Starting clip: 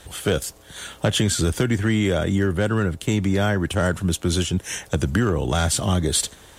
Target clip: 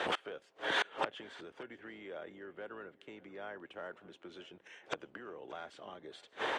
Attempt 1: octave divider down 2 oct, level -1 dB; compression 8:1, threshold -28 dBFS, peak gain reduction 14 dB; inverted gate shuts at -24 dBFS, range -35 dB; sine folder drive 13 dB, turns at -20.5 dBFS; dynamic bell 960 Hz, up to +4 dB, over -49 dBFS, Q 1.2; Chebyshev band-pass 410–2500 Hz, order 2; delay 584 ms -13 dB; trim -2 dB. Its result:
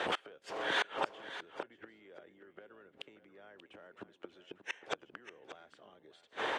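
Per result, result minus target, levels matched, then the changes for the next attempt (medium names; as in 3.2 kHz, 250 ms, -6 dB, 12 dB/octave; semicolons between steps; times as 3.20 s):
compression: peak gain reduction +10 dB; echo-to-direct +9 dB
change: compression 8:1, threshold -16.5 dBFS, peak gain reduction 4 dB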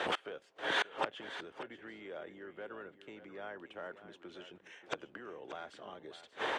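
echo-to-direct +9 dB
change: delay 584 ms -22 dB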